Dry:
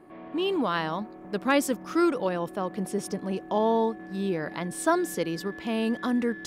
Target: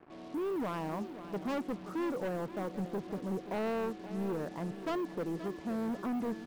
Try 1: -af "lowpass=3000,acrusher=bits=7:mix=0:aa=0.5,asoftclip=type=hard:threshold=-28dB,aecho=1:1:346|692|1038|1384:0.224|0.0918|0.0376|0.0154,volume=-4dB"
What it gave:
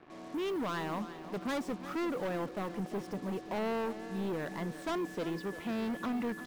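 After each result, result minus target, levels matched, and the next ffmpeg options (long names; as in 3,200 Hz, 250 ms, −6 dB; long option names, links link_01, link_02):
echo 181 ms early; 4,000 Hz band +5.0 dB
-af "lowpass=3000,acrusher=bits=7:mix=0:aa=0.5,asoftclip=type=hard:threshold=-28dB,aecho=1:1:527|1054|1581|2108:0.224|0.0918|0.0376|0.0154,volume=-4dB"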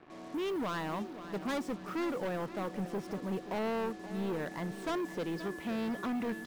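4,000 Hz band +5.0 dB
-af "lowpass=950,acrusher=bits=7:mix=0:aa=0.5,asoftclip=type=hard:threshold=-28dB,aecho=1:1:527|1054|1581|2108:0.224|0.0918|0.0376|0.0154,volume=-4dB"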